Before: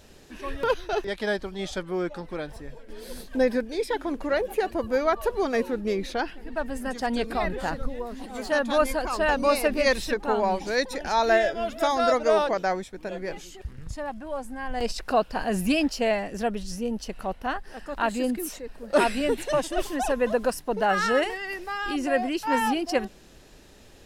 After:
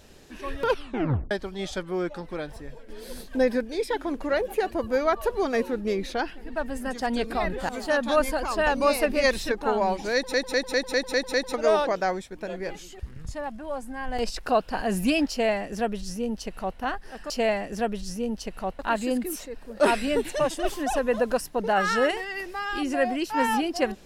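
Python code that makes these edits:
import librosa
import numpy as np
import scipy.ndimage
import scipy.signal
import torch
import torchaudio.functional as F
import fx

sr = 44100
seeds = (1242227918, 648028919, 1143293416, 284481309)

y = fx.edit(x, sr, fx.tape_stop(start_s=0.7, length_s=0.61),
    fx.cut(start_s=7.69, length_s=0.62),
    fx.stutter_over(start_s=10.76, slice_s=0.2, count=7),
    fx.duplicate(start_s=15.92, length_s=1.49, to_s=17.92), tone=tone)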